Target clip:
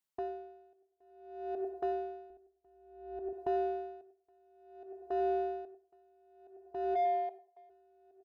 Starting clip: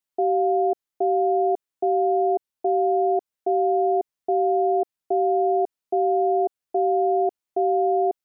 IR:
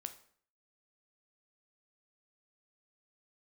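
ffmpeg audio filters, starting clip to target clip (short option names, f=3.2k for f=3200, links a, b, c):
-filter_complex "[0:a]asplit=3[a][b][c];[a]afade=t=out:st=6.94:d=0.02[d];[b]highpass=f=560:w=0.5412,highpass=f=560:w=1.3066,afade=t=in:st=6.94:d=0.02,afade=t=out:st=7.69:d=0.02[e];[c]afade=t=in:st=7.69:d=0.02[f];[d][e][f]amix=inputs=3:normalize=0,aecho=1:1:96|192|288|384:0.2|0.0898|0.0404|0.0182,asplit=2[g][h];[h]asoftclip=type=tanh:threshold=-28.5dB,volume=-3.5dB[i];[g][i]amix=inputs=2:normalize=0,agate=range=-13dB:threshold=-31dB:ratio=16:detection=peak,asplit=2[j][k];[1:a]atrim=start_sample=2205[l];[k][l]afir=irnorm=-1:irlink=0,volume=5dB[m];[j][m]amix=inputs=2:normalize=0,acompressor=threshold=-26dB:ratio=8,alimiter=level_in=1dB:limit=-24dB:level=0:latency=1:release=18,volume=-1dB,asettb=1/sr,asplit=3[n][o][p];[n]atrim=end=2.304[q];[o]atrim=start=2.3:end=3.33,asetpts=PTS-STARTPTS,afade=t=in:d=0.004:c=qsin,afade=t=out:st=1.026:d=0.004:c=qsin,aemphasis=mode=reproduction:type=bsi[r];[p]atrim=start=3.326[s];[q][r]acrossfade=d=0.004:c1=hsin:c2=qsin[t];[t][s]acrossfade=d=0.004:c1=qsin:c2=hsin,aeval=exprs='val(0)*pow(10,-36*(0.5-0.5*cos(2*PI*0.57*n/s))/20)':c=same"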